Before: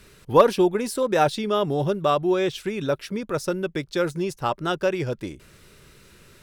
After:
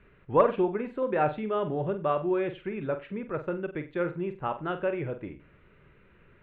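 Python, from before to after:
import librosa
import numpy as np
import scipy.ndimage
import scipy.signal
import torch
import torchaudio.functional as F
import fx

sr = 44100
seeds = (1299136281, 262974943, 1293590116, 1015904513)

y = scipy.signal.sosfilt(scipy.signal.cheby2(4, 40, 4900.0, 'lowpass', fs=sr, output='sos'), x)
y = fx.room_flutter(y, sr, wall_m=7.9, rt60_s=0.29)
y = y * 10.0 ** (-6.5 / 20.0)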